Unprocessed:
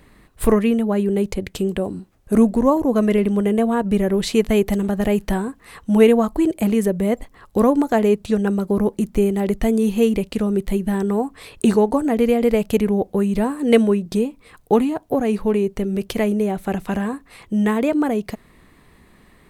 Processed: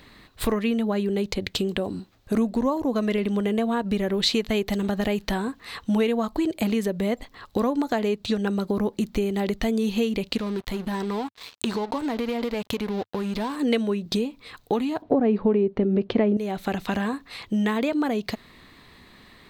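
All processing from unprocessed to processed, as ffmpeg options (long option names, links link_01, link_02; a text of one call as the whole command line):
ffmpeg -i in.wav -filter_complex "[0:a]asettb=1/sr,asplit=3[link_01][link_02][link_03];[link_01]atrim=end=10.374[link_04];[link_02]atrim=start=10.37:end=13.56,asetpts=PTS-STARTPTS,afade=type=in:duration=0.004:curve=qsin,afade=type=out:start_time=3.186:duration=0.004:curve=qsin,equalizer=frequency=1000:width_type=o:width=0.36:gain=7.5,acompressor=threshold=-23dB:ratio=3:attack=3.2:release=140:knee=1:detection=peak,aeval=exprs='sgn(val(0))*max(abs(val(0))-0.0106,0)':channel_layout=same[link_05];[link_03]atrim=start=13.556[link_06];[link_04][link_05]acrossfade=duration=0.004:curve1=hsin:curve2=qsin[link_07];[link_07][link_06]acrossfade=duration=0.004:curve1=qsin:curve2=hsin,asettb=1/sr,asplit=3[link_08][link_09][link_10];[link_08]atrim=end=15.024[link_11];[link_09]atrim=start=15.02:end=16.37,asetpts=PTS-STARTPTS,afade=type=in:duration=0.004:curve=qsin,afade=type=out:start_time=1.346:duration=0.004:curve=qsin,lowpass=2600,equalizer=frequency=320:width=0.33:gain=13.5[link_12];[link_10]atrim=start=16.366[link_13];[link_11][link_12]acrossfade=duration=0.004:curve1=hsin:curve2=qsin[link_14];[link_14][link_13]acrossfade=duration=0.004:curve1=qsin:curve2=hsin,lowshelf=frequency=480:gain=-9,acompressor=threshold=-28dB:ratio=3,equalizer=frequency=100:width_type=o:width=0.67:gain=6,equalizer=frequency=250:width_type=o:width=0.67:gain=4,equalizer=frequency=4000:width_type=o:width=0.67:gain=9,equalizer=frequency=10000:width_type=o:width=0.67:gain=-10,volume=3.5dB" out.wav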